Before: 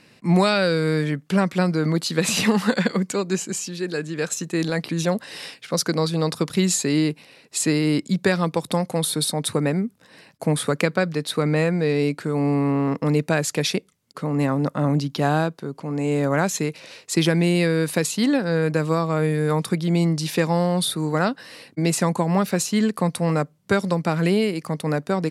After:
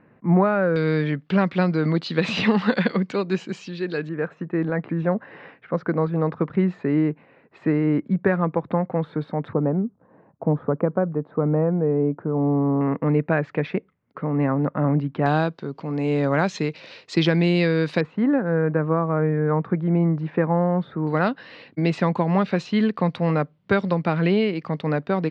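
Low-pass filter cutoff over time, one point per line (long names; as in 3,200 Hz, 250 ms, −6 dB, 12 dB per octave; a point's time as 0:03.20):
low-pass filter 24 dB per octave
1,600 Hz
from 0:00.76 3,800 Hz
from 0:04.09 1,800 Hz
from 0:09.53 1,100 Hz
from 0:12.81 2,100 Hz
from 0:15.26 4,500 Hz
from 0:18.01 1,700 Hz
from 0:21.07 3,600 Hz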